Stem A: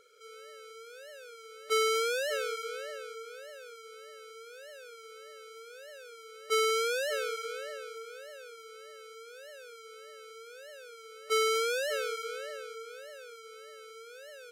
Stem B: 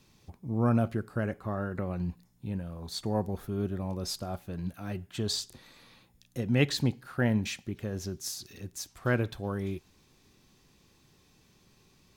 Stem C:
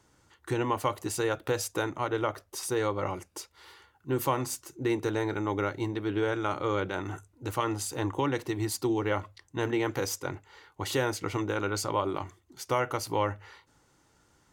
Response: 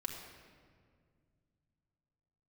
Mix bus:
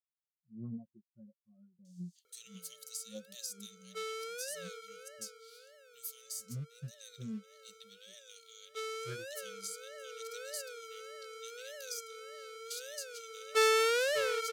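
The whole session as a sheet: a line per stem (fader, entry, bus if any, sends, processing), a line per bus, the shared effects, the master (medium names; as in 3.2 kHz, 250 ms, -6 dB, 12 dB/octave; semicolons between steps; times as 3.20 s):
+1.0 dB, 2.25 s, no bus, no send, auto duck -14 dB, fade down 1.45 s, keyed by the second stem
-4.0 dB, 0.00 s, bus A, no send, comb 5.6 ms, depth 54%; spectral contrast expander 4:1
+1.5 dB, 1.85 s, bus A, no send, inverse Chebyshev high-pass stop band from 1.3 kHz, stop band 60 dB
bus A: 0.0 dB, compression 12:1, threshold -39 dBFS, peak gain reduction 19.5 dB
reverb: none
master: loudspeaker Doppler distortion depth 0.16 ms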